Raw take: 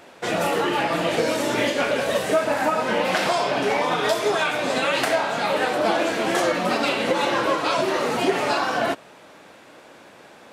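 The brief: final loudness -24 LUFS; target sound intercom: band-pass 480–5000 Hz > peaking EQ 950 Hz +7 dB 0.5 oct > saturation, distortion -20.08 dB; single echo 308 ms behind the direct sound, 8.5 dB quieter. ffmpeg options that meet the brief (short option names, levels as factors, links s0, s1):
-af "highpass=480,lowpass=5000,equalizer=f=950:t=o:w=0.5:g=7,aecho=1:1:308:0.376,asoftclip=threshold=0.237,volume=0.794"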